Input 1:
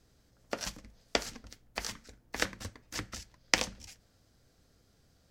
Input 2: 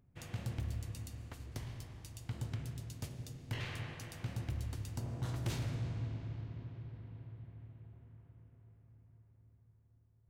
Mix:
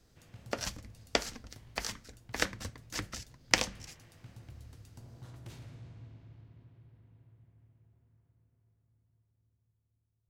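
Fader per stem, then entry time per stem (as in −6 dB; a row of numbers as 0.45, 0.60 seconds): +0.5, −11.0 decibels; 0.00, 0.00 seconds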